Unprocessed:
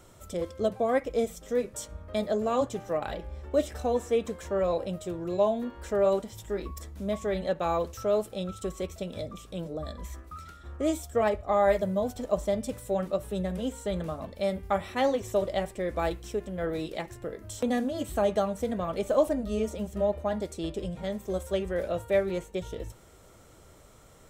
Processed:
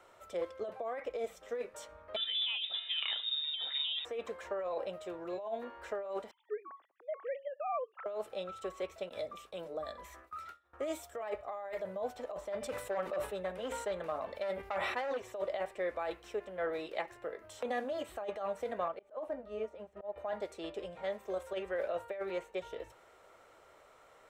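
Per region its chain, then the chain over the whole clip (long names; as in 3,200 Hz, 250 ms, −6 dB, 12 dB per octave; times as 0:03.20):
0:02.16–0:04.05: parametric band 98 Hz +11 dB 1.9 octaves + voice inversion scrambler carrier 3,700 Hz
0:06.31–0:08.06: three sine waves on the formant tracks + expander for the loud parts, over −43 dBFS
0:09.09–0:11.79: noise gate with hold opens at −34 dBFS, closes at −40 dBFS + high-shelf EQ 7,000 Hz +8 dB
0:12.52–0:15.17: hard clipping −25 dBFS + level that may fall only so fast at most 35 dB per second
0:18.88–0:20.16: volume swells 162 ms + high-shelf EQ 3,000 Hz −12 dB + expander for the loud parts, over −44 dBFS
whole clip: three-way crossover with the lows and the highs turned down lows −22 dB, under 450 Hz, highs −15 dB, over 3,300 Hz; notch filter 3,300 Hz, Q 23; compressor whose output falls as the input rises −33 dBFS, ratio −1; level −2.5 dB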